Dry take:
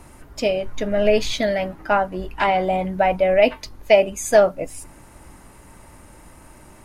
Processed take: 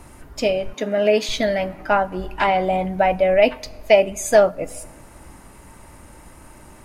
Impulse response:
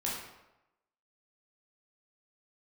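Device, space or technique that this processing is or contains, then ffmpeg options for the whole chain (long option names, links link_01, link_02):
compressed reverb return: -filter_complex "[0:a]asplit=2[link_01][link_02];[1:a]atrim=start_sample=2205[link_03];[link_02][link_03]afir=irnorm=-1:irlink=0,acompressor=threshold=-21dB:ratio=6,volume=-14.5dB[link_04];[link_01][link_04]amix=inputs=2:normalize=0,asettb=1/sr,asplit=3[link_05][link_06][link_07];[link_05]atrim=end=0.734[link_08];[link_06]atrim=start=0.73:end=1.29,asetpts=PTS-STARTPTS,afade=type=in:duration=0.004:curve=qsin,afade=type=out:start_time=0.556:duration=0.004:curve=qsin,highpass=frequency=190:width=0.5412,highpass=frequency=190:width=1.3066[link_09];[link_07]atrim=start=1.286[link_10];[link_08][link_09]acrossfade=duration=0.004:curve1=hsin:curve2=qsin[link_11];[link_11][link_10]acrossfade=duration=0.004:curve1=qsin:curve2=hsin"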